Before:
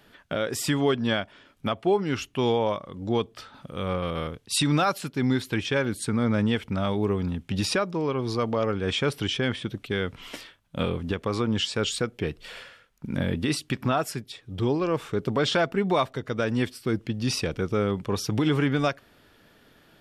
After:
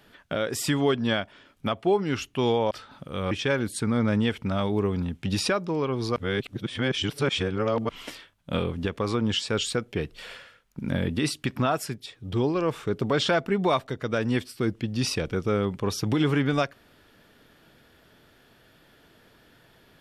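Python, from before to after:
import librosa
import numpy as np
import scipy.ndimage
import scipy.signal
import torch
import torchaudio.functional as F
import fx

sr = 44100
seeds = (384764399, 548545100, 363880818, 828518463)

y = fx.edit(x, sr, fx.cut(start_s=2.71, length_s=0.63),
    fx.cut(start_s=3.94, length_s=1.63),
    fx.reverse_span(start_s=8.42, length_s=1.73), tone=tone)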